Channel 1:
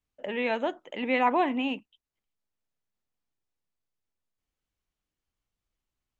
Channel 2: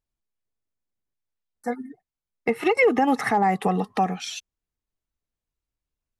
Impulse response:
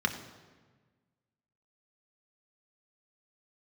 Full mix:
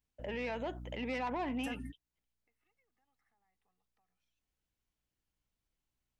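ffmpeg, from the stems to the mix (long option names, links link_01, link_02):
-filter_complex "[0:a]asoftclip=type=tanh:threshold=-22dB,bandreject=frequency=1200:width=13,volume=-2dB,asplit=2[link_01][link_02];[1:a]highshelf=frequency=2500:gain=11,acrossover=split=950|2300[link_03][link_04][link_05];[link_03]acompressor=threshold=-38dB:ratio=4[link_06];[link_04]acompressor=threshold=-30dB:ratio=4[link_07];[link_05]acompressor=threshold=-45dB:ratio=4[link_08];[link_06][link_07][link_08]amix=inputs=3:normalize=0,aeval=exprs='val(0)+0.00794*(sin(2*PI*60*n/s)+sin(2*PI*2*60*n/s)/2+sin(2*PI*3*60*n/s)/3+sin(2*PI*4*60*n/s)/4+sin(2*PI*5*60*n/s)/5)':channel_layout=same,volume=-2dB[link_09];[link_02]apad=whole_len=273127[link_10];[link_09][link_10]sidechaingate=range=-50dB:threshold=-53dB:ratio=16:detection=peak[link_11];[link_01][link_11]amix=inputs=2:normalize=0,alimiter=level_in=6.5dB:limit=-24dB:level=0:latency=1:release=101,volume=-6.5dB"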